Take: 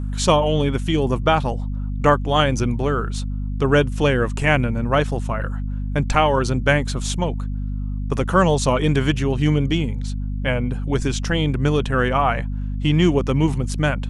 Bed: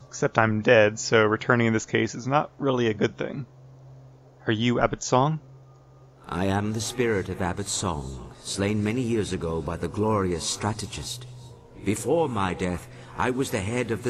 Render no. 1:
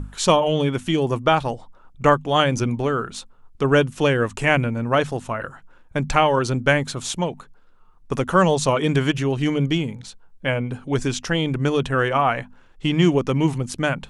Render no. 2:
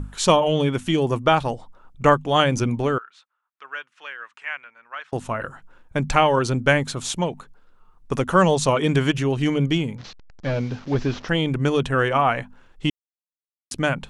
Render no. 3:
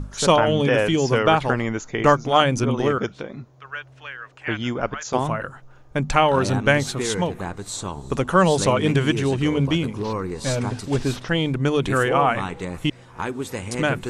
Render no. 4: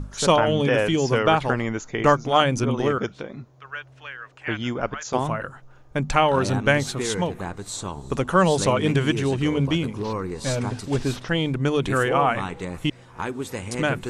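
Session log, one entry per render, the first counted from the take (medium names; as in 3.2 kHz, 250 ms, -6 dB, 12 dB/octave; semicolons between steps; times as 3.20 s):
hum notches 50/100/150/200/250 Hz
2.98–5.13 s: ladder band-pass 1.9 kHz, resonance 30%; 9.98–11.29 s: one-bit delta coder 32 kbps, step -38.5 dBFS; 12.90–13.71 s: mute
add bed -3 dB
trim -1.5 dB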